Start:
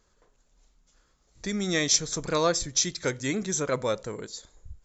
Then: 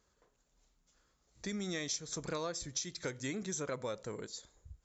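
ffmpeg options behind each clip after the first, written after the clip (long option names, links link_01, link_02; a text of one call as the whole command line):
ffmpeg -i in.wav -af "highpass=44,acompressor=threshold=-29dB:ratio=6,volume=-6dB" out.wav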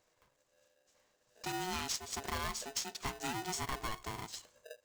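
ffmpeg -i in.wav -af "aeval=exprs='val(0)*sgn(sin(2*PI*550*n/s))':channel_layout=same" out.wav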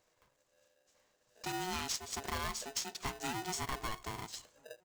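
ffmpeg -i in.wav -filter_complex "[0:a]asplit=2[link_01][link_02];[link_02]adelay=1341,volume=-29dB,highshelf=frequency=4000:gain=-30.2[link_03];[link_01][link_03]amix=inputs=2:normalize=0" out.wav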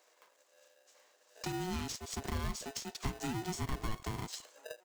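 ffmpeg -i in.wav -filter_complex "[0:a]acrossover=split=330[link_01][link_02];[link_01]aeval=exprs='val(0)*gte(abs(val(0)),0.00126)':channel_layout=same[link_03];[link_02]acompressor=threshold=-48dB:ratio=6[link_04];[link_03][link_04]amix=inputs=2:normalize=0,volume=7.5dB" out.wav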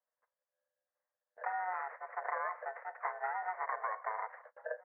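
ffmpeg -i in.wav -af "asuperpass=centerf=990:order=20:qfactor=0.65,agate=range=-32dB:threshold=-60dB:ratio=16:detection=peak,volume=8dB" out.wav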